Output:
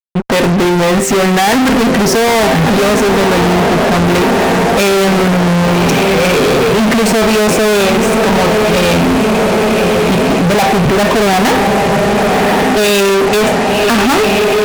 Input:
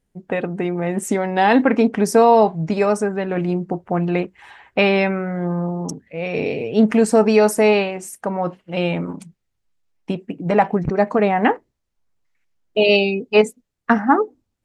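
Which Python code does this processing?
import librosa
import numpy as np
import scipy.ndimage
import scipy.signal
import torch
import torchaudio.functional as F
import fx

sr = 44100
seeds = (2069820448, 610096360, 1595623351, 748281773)

p1 = scipy.signal.sosfilt(scipy.signal.butter(2, 4200.0, 'lowpass', fs=sr, output='sos'), x)
p2 = fx.comb_fb(p1, sr, f0_hz=130.0, decay_s=0.4, harmonics='all', damping=0.0, mix_pct=60)
p3 = p2 + fx.echo_diffused(p2, sr, ms=1150, feedback_pct=63, wet_db=-13.0, dry=0)
p4 = fx.fuzz(p3, sr, gain_db=46.0, gate_db=-52.0)
p5 = fx.doppler_dist(p4, sr, depth_ms=0.33, at=(3.62, 4.06))
y = F.gain(torch.from_numpy(p5), 4.0).numpy()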